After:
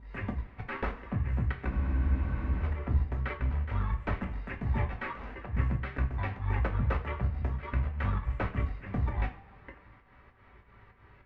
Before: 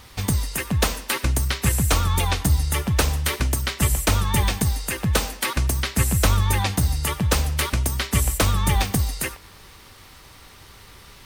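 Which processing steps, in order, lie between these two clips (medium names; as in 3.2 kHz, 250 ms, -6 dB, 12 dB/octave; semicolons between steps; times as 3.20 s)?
slices played last to first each 206 ms, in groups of 3; valve stage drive 16 dB, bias 0.6; Chebyshev low-pass 2 kHz, order 3; volume shaper 99 bpm, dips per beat 2, -22 dB, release 161 ms; two-slope reverb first 0.25 s, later 1.7 s, from -20 dB, DRR 0.5 dB; spectral freeze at 1.71 s, 0.92 s; trim -7.5 dB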